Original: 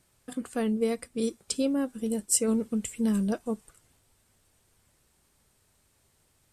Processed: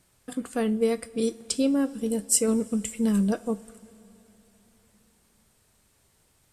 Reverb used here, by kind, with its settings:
coupled-rooms reverb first 0.29 s, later 3.9 s, from −18 dB, DRR 12.5 dB
level +2.5 dB

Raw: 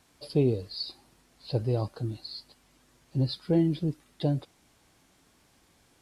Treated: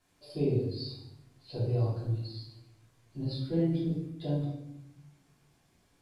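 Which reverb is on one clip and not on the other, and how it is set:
rectangular room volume 260 cubic metres, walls mixed, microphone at 3.1 metres
level −15 dB

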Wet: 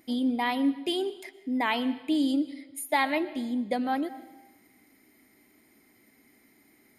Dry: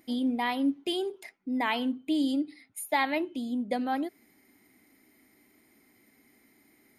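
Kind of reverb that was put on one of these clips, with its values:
comb and all-pass reverb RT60 1.1 s, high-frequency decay 0.9×, pre-delay 85 ms, DRR 16 dB
level +1.5 dB

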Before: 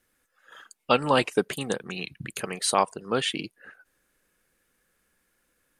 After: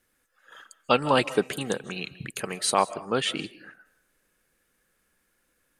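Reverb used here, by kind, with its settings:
comb and all-pass reverb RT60 0.44 s, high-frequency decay 0.45×, pre-delay 115 ms, DRR 16.5 dB

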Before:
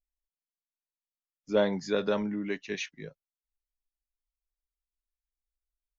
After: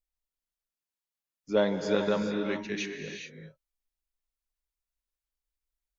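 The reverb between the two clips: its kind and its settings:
reverb whose tail is shaped and stops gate 450 ms rising, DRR 4 dB

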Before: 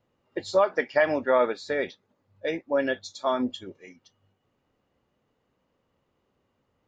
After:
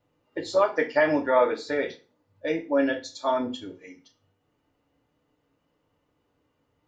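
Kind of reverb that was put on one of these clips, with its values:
feedback delay network reverb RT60 0.33 s, low-frequency decay 1.1×, high-frequency decay 0.9×, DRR 1.5 dB
level −1.5 dB

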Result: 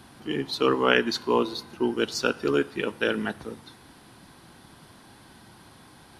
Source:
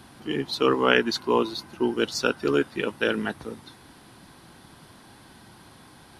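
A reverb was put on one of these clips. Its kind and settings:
four-comb reverb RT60 0.78 s, combs from 26 ms, DRR 20 dB
level −1 dB

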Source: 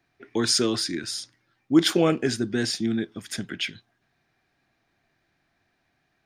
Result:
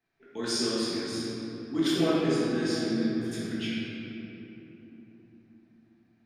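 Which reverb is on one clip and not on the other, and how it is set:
rectangular room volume 210 cubic metres, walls hard, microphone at 1.5 metres
level −14.5 dB

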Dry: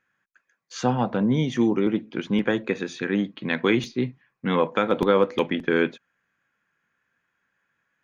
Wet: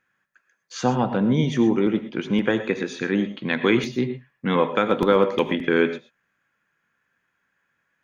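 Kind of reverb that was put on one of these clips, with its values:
reverb whose tail is shaped and stops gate 140 ms rising, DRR 10 dB
level +1.5 dB

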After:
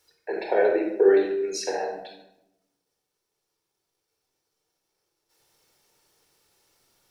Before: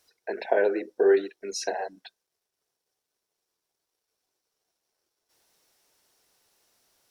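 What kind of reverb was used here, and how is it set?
rectangular room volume 2,600 cubic metres, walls furnished, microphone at 4.3 metres
level −1.5 dB

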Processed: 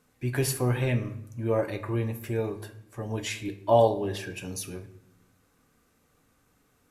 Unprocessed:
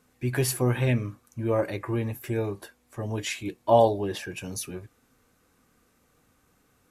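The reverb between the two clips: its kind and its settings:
rectangular room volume 190 cubic metres, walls mixed, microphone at 0.35 metres
level −2 dB

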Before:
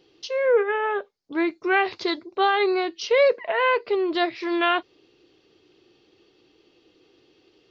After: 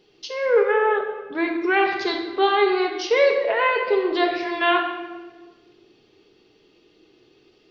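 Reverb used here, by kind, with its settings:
rectangular room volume 1,100 cubic metres, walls mixed, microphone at 1.4 metres

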